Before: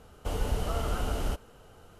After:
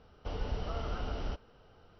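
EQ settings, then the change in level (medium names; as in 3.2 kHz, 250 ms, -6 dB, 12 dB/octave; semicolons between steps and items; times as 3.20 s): brick-wall FIR low-pass 5.9 kHz; -6.0 dB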